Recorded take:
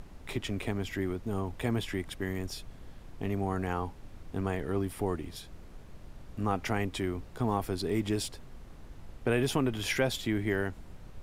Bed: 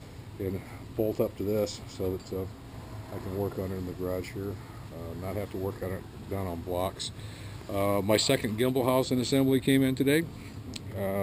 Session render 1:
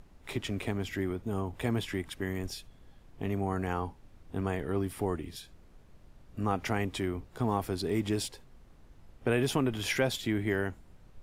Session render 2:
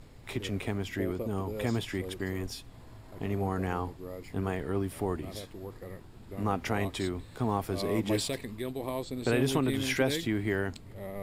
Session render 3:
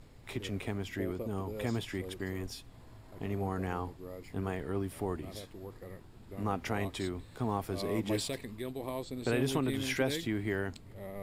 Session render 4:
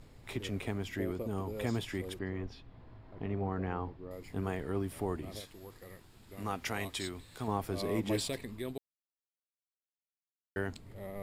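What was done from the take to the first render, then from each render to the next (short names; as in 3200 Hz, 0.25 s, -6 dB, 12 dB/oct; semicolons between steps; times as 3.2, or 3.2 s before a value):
noise print and reduce 8 dB
add bed -9.5 dB
gain -3.5 dB
2.19–4.11 air absorption 260 m; 5.4–7.48 tilt shelf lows -5.5 dB, about 1500 Hz; 8.78–10.56 mute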